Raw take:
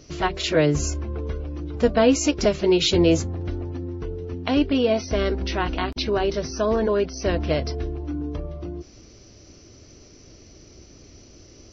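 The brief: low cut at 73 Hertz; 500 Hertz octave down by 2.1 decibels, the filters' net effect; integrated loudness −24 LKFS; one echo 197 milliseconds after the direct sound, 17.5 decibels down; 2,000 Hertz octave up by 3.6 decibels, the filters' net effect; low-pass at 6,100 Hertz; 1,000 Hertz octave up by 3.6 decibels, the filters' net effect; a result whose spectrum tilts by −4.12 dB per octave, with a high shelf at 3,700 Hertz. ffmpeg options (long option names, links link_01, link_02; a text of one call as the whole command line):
ffmpeg -i in.wav -af "highpass=73,lowpass=6100,equalizer=frequency=500:width_type=o:gain=-4.5,equalizer=frequency=1000:width_type=o:gain=6,equalizer=frequency=2000:width_type=o:gain=4,highshelf=frequency=3700:gain=-3,aecho=1:1:197:0.133" out.wav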